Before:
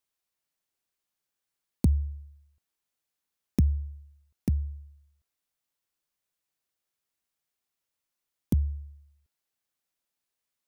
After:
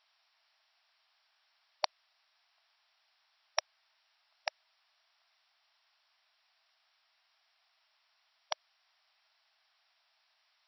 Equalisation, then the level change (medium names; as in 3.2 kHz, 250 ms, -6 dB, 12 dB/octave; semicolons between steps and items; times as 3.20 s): brick-wall FIR band-pass 600–5700 Hz; +17.5 dB